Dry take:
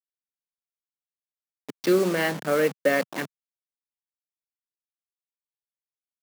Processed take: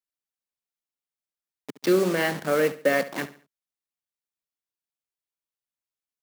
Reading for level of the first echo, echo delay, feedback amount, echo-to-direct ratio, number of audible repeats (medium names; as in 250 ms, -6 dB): -15.5 dB, 70 ms, 35%, -15.0 dB, 3